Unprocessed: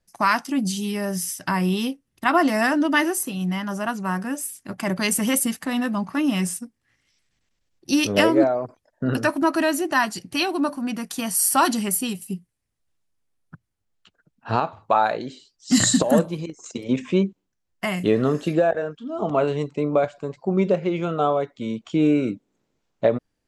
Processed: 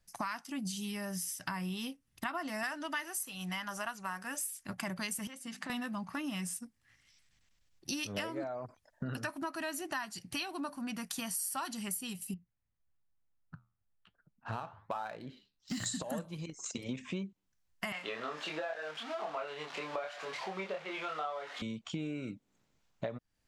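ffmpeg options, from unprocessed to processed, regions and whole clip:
-filter_complex "[0:a]asettb=1/sr,asplit=3[s0][s1][s2];[s0]atrim=end=2.634[s3];[s1]atrim=start=2.63:end=4.66,asetpts=PTS-STARTPTS,afade=t=in:d=0.004:c=qsin,afade=t=out:st=2.026:d=0.004:c=qsin,equalizer=f=160:t=o:w=2.7:g=-12,acontrast=27[s4];[s2]atrim=start=4.656[s5];[s3][s4]acrossfade=d=0.004:c1=hsin:c2=qsin[s6];[s6][s5]acrossfade=d=0.004:c1=qsin:c2=hsin,asettb=1/sr,asplit=3[s7][s8][s9];[s7]atrim=end=5.274[s10];[s8]atrim=start=5.27:end=5.7,asetpts=PTS-STARTPTS,afade=t=in:d=0.004:c=qsin,afade=t=out:st=0.426:d=0.004:c=qsin,bandreject=f=50:t=h:w=6,bandreject=f=100:t=h:w=6,bandreject=f=150:t=h:w=6,bandreject=f=200:t=h:w=6,bandreject=f=250:t=h:w=6,bandreject=f=300:t=h:w=6,bandreject=f=350:t=h:w=6,acompressor=threshold=0.0224:ratio=6:attack=3.2:release=140:knee=1:detection=peak,highpass=170,lowpass=6200[s11];[s9]atrim=start=5.696[s12];[s10][s11]acrossfade=d=0.004:c1=hsin:c2=qsin[s13];[s13][s12]acrossfade=d=0.004:c1=qsin:c2=hsin,asettb=1/sr,asplit=3[s14][s15][s16];[s14]atrim=end=12.344[s17];[s15]atrim=start=12.34:end=15.86,asetpts=PTS-STARTPTS,afade=t=in:d=0.004:c=qsin,afade=t=out:st=3.516:d=0.004:c=qsin,highshelf=f=5800:g=-9.5,adynamicsmooth=sensitivity=7.5:basefreq=2300,flanger=delay=5.2:depth=7.8:regen=-79:speed=1.1:shape=sinusoidal[s18];[s16]atrim=start=15.856[s19];[s17][s18]acrossfade=d=0.004:c1=hsin:c2=qsin[s20];[s20][s19]acrossfade=d=0.004:c1=qsin:c2=hsin,asettb=1/sr,asplit=3[s21][s22][s23];[s21]atrim=end=17.924[s24];[s22]atrim=start=17.92:end=21.62,asetpts=PTS-STARTPTS,afade=t=in:d=0.004:c=qsin,afade=t=out:st=3.696:d=0.004:c=qsin,aeval=exprs='val(0)+0.5*0.0251*sgn(val(0))':c=same,highpass=620,lowpass=4100,asplit=2[s25][s26];[s26]adelay=26,volume=0.75[s27];[s25][s27]amix=inputs=2:normalize=0,atrim=end_sample=163170[s28];[s23]atrim=start=21.616[s29];[s24][s28]acrossfade=d=0.004:c1=hsin:c2=qsin[s30];[s30][s29]acrossfade=d=0.004:c1=qsin:c2=hsin,equalizer=f=380:w=0.82:g=-9,acompressor=threshold=0.0126:ratio=5,volume=1.12"

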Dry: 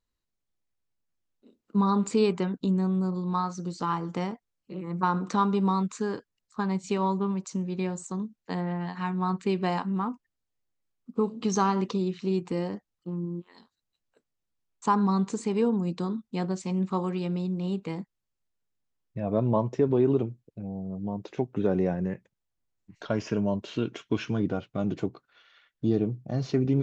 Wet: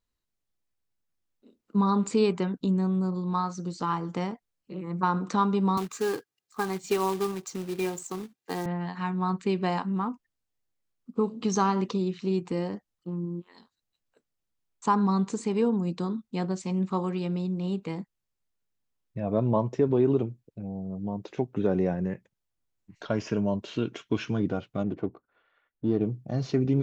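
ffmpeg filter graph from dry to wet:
-filter_complex "[0:a]asettb=1/sr,asplit=3[s0][s1][s2];[s0]atrim=end=5.774[s3];[s1]atrim=start=5.77:end=8.66,asetpts=PTS-STARTPTS,afade=t=in:d=0.004:c=qsin,afade=t=out:st=2.886:d=0.004:c=qsin,highpass=f=120:w=0.5412,highpass=f=120:w=1.3066,aecho=1:1:2.5:0.58,atrim=end_sample=127449,acrusher=bits=3:mode=log:mix=0:aa=0.000001[s4];[s2]atrim=start=8.656[s5];[s3][s4]acrossfade=d=0.004:c1=hsin:c2=qsin[s6];[s6][s5]acrossfade=d=0.004:c1=qsin:c2=hsin,asettb=1/sr,asplit=3[s7][s8][s9];[s7]atrim=end=24.834[s10];[s8]atrim=start=24.83:end=26.01,asetpts=PTS-STARTPTS,afade=t=in:d=0.004:c=qsin,afade=t=out:st=1.176:d=0.004:c=qsin,equalizer=f=140:t=o:w=0.56:g=-7.5,adynamicsmooth=sensitivity=3:basefreq=1200[s11];[s9]atrim=start=26.006[s12];[s10][s11]acrossfade=d=0.004:c1=hsin:c2=qsin[s13];[s13][s12]acrossfade=d=0.004:c1=qsin:c2=hsin"

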